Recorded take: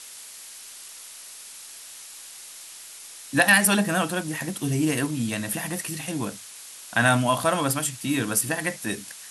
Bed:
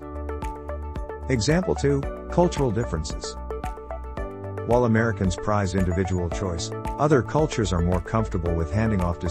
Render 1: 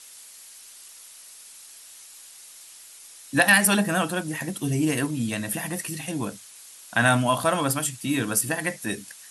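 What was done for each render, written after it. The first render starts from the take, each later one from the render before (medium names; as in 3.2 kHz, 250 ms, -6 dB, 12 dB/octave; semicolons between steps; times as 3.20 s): noise reduction 6 dB, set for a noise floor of -43 dBFS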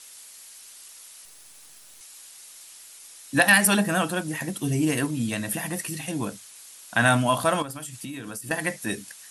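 1.25–2.01 s: partial rectifier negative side -12 dB; 7.62–8.51 s: compression 10:1, threshold -32 dBFS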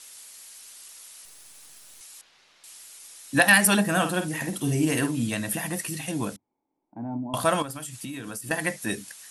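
2.21–2.64 s: distance through air 240 m; 3.90–5.27 s: doubling 50 ms -8.5 dB; 6.36–7.34 s: cascade formant filter u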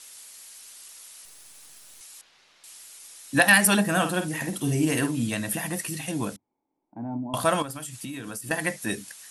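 no audible change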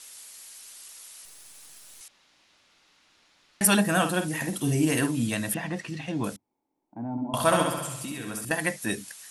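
2.08–3.61 s: room tone; 5.54–6.24 s: distance through air 160 m; 7.11–8.45 s: flutter echo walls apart 11.5 m, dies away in 0.91 s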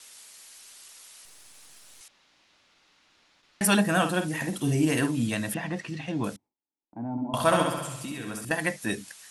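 gate with hold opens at -53 dBFS; treble shelf 10 kHz -9.5 dB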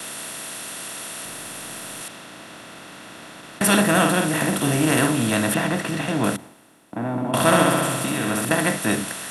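spectral levelling over time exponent 0.4; three bands expanded up and down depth 40%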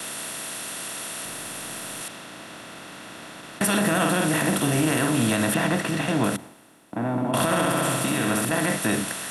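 peak limiter -12 dBFS, peak gain reduction 10 dB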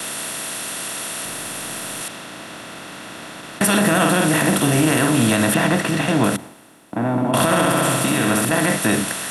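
trim +5.5 dB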